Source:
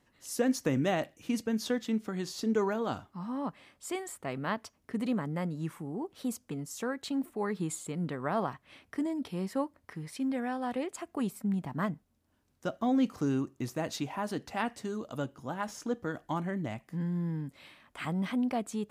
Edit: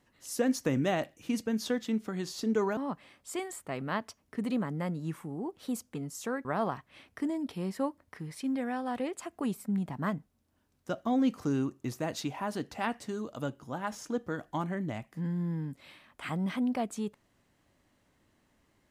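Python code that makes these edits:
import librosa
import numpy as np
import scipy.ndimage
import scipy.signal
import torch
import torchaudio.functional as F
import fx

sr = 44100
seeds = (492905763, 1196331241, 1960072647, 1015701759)

y = fx.edit(x, sr, fx.cut(start_s=2.77, length_s=0.56),
    fx.cut(start_s=7.01, length_s=1.2), tone=tone)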